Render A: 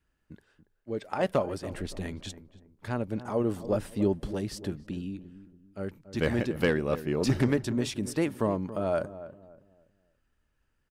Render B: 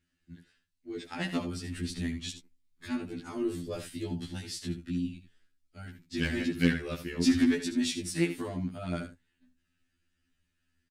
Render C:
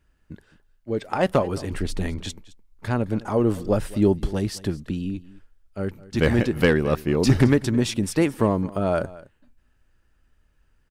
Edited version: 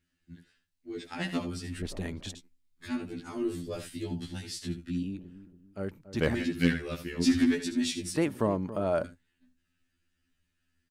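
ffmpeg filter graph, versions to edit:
-filter_complex "[0:a]asplit=3[a][b][c];[1:a]asplit=4[d][e][f][g];[d]atrim=end=1.822[h];[a]atrim=start=1.818:end=2.352[i];[e]atrim=start=2.348:end=5.032[j];[b]atrim=start=5.028:end=6.352[k];[f]atrim=start=6.348:end=8.162[l];[c]atrim=start=8.158:end=9.042[m];[g]atrim=start=9.038[n];[h][i]acrossfade=d=0.004:c1=hsin:c2=hsin[o];[o][j]acrossfade=d=0.004:c1=hsin:c2=hsin[p];[p][k]acrossfade=d=0.004:c1=hsin:c2=hsin[q];[q][l]acrossfade=d=0.004:c1=hsin:c2=hsin[r];[r][m]acrossfade=d=0.004:c1=hsin:c2=hsin[s];[s][n]acrossfade=d=0.004:c1=hsin:c2=hsin"

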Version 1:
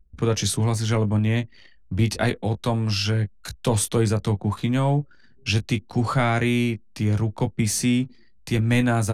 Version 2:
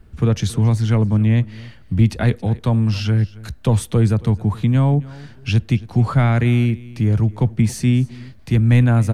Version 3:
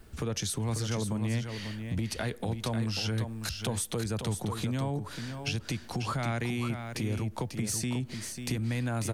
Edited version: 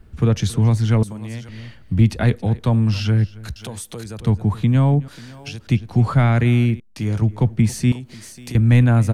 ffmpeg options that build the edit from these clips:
-filter_complex "[2:a]asplit=4[a][b][c][d];[1:a]asplit=6[e][f][g][h][i][j];[e]atrim=end=1.032[k];[a]atrim=start=1.028:end=1.492[l];[f]atrim=start=1.488:end=3.562[m];[b]atrim=start=3.558:end=4.202[n];[g]atrim=start=4.198:end=5.082[o];[c]atrim=start=5.078:end=5.672[p];[h]atrim=start=5.668:end=6.802[q];[0:a]atrim=start=6.798:end=7.222[r];[i]atrim=start=7.218:end=7.922[s];[d]atrim=start=7.918:end=8.552[t];[j]atrim=start=8.548[u];[k][l]acrossfade=d=0.004:c1=hsin:c2=hsin[v];[v][m]acrossfade=d=0.004:c1=hsin:c2=hsin[w];[w][n]acrossfade=d=0.004:c1=hsin:c2=hsin[x];[x][o]acrossfade=d=0.004:c1=hsin:c2=hsin[y];[y][p]acrossfade=d=0.004:c1=hsin:c2=hsin[z];[z][q]acrossfade=d=0.004:c1=hsin:c2=hsin[aa];[aa][r]acrossfade=d=0.004:c1=hsin:c2=hsin[ab];[ab][s]acrossfade=d=0.004:c1=hsin:c2=hsin[ac];[ac][t]acrossfade=d=0.004:c1=hsin:c2=hsin[ad];[ad][u]acrossfade=d=0.004:c1=hsin:c2=hsin"

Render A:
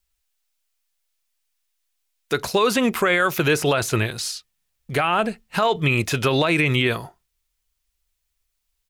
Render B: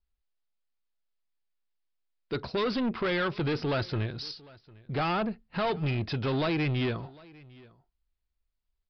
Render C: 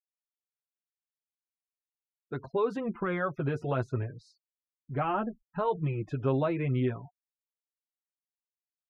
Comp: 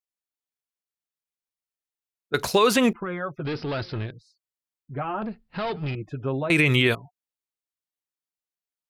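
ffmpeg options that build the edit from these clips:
-filter_complex "[0:a]asplit=2[a][b];[1:a]asplit=2[c][d];[2:a]asplit=5[e][f][g][h][i];[e]atrim=end=2.342[j];[a]atrim=start=2.338:end=2.932[k];[f]atrim=start=2.928:end=3.452[l];[c]atrim=start=3.448:end=4.112[m];[g]atrim=start=4.108:end=5.222[n];[d]atrim=start=5.218:end=5.952[o];[h]atrim=start=5.948:end=6.502[p];[b]atrim=start=6.498:end=6.952[q];[i]atrim=start=6.948[r];[j][k]acrossfade=d=0.004:c1=hsin:c2=hsin[s];[s][l]acrossfade=d=0.004:c1=hsin:c2=hsin[t];[t][m]acrossfade=d=0.004:c1=hsin:c2=hsin[u];[u][n]acrossfade=d=0.004:c1=hsin:c2=hsin[v];[v][o]acrossfade=d=0.004:c1=hsin:c2=hsin[w];[w][p]acrossfade=d=0.004:c1=hsin:c2=hsin[x];[x][q]acrossfade=d=0.004:c1=hsin:c2=hsin[y];[y][r]acrossfade=d=0.004:c1=hsin:c2=hsin"

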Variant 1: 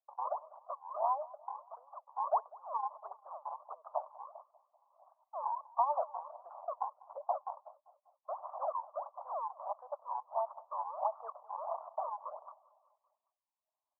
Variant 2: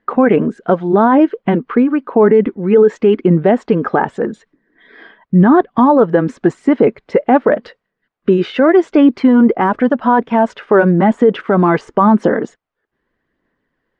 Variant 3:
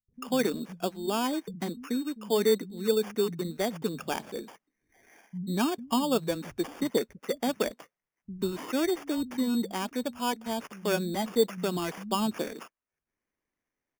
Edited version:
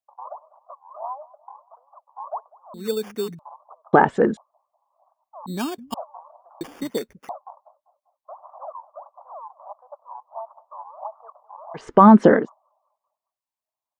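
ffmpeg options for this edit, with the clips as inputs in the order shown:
-filter_complex "[2:a]asplit=3[a][b][c];[1:a]asplit=2[d][e];[0:a]asplit=6[f][g][h][i][j][k];[f]atrim=end=2.742[l];[a]atrim=start=2.738:end=3.392[m];[g]atrim=start=3.388:end=3.932[n];[d]atrim=start=3.928:end=4.372[o];[h]atrim=start=4.368:end=5.462[p];[b]atrim=start=5.458:end=5.942[q];[i]atrim=start=5.938:end=6.612[r];[c]atrim=start=6.608:end=7.292[s];[j]atrim=start=7.288:end=11.9[t];[e]atrim=start=11.74:end=12.5[u];[k]atrim=start=12.34[v];[l][m]acrossfade=d=0.004:c1=hsin:c2=hsin[w];[w][n]acrossfade=d=0.004:c1=hsin:c2=hsin[x];[x][o]acrossfade=d=0.004:c1=hsin:c2=hsin[y];[y][p]acrossfade=d=0.004:c1=hsin:c2=hsin[z];[z][q]acrossfade=d=0.004:c1=hsin:c2=hsin[aa];[aa][r]acrossfade=d=0.004:c1=hsin:c2=hsin[ab];[ab][s]acrossfade=d=0.004:c1=hsin:c2=hsin[ac];[ac][t]acrossfade=d=0.004:c1=hsin:c2=hsin[ad];[ad][u]acrossfade=d=0.16:c1=tri:c2=tri[ae];[ae][v]acrossfade=d=0.16:c1=tri:c2=tri"

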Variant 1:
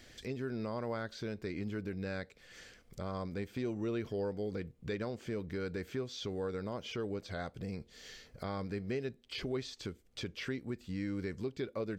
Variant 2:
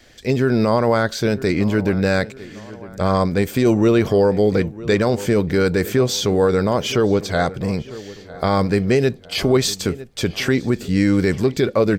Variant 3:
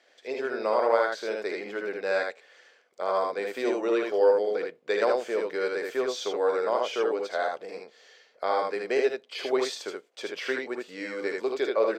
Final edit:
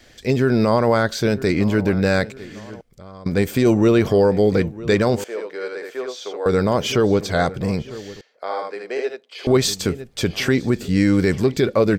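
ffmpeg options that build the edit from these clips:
-filter_complex "[2:a]asplit=2[a][b];[1:a]asplit=4[c][d][e][f];[c]atrim=end=2.812[g];[0:a]atrim=start=2.808:end=3.262[h];[d]atrim=start=3.258:end=5.242[i];[a]atrim=start=5.238:end=6.462[j];[e]atrim=start=6.458:end=8.212[k];[b]atrim=start=8.208:end=9.472[l];[f]atrim=start=9.468[m];[g][h]acrossfade=d=0.004:c1=hsin:c2=hsin[n];[n][i]acrossfade=d=0.004:c1=hsin:c2=hsin[o];[o][j]acrossfade=d=0.004:c1=hsin:c2=hsin[p];[p][k]acrossfade=d=0.004:c1=hsin:c2=hsin[q];[q][l]acrossfade=d=0.004:c1=hsin:c2=hsin[r];[r][m]acrossfade=d=0.004:c1=hsin:c2=hsin"

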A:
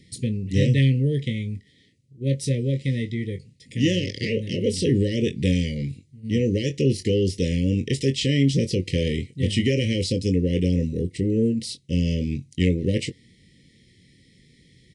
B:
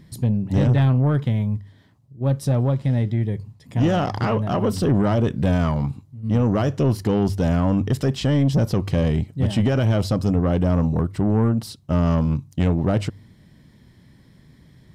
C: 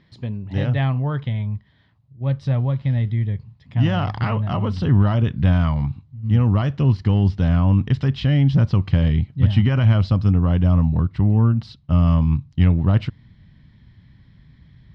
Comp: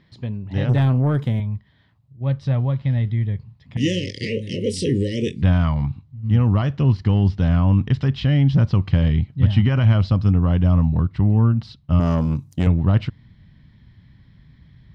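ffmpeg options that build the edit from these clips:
-filter_complex "[1:a]asplit=2[a][b];[2:a]asplit=4[c][d][e][f];[c]atrim=end=0.692[g];[a]atrim=start=0.688:end=1.402[h];[d]atrim=start=1.398:end=3.772[i];[0:a]atrim=start=3.768:end=5.422[j];[e]atrim=start=5.418:end=12.002[k];[b]atrim=start=11.998:end=12.672[l];[f]atrim=start=12.668[m];[g][h]acrossfade=d=0.004:c1=hsin:c2=hsin[n];[n][i]acrossfade=d=0.004:c1=hsin:c2=hsin[o];[o][j]acrossfade=d=0.004:c1=hsin:c2=hsin[p];[p][k]acrossfade=d=0.004:c1=hsin:c2=hsin[q];[q][l]acrossfade=d=0.004:c1=hsin:c2=hsin[r];[r][m]acrossfade=d=0.004:c1=hsin:c2=hsin"

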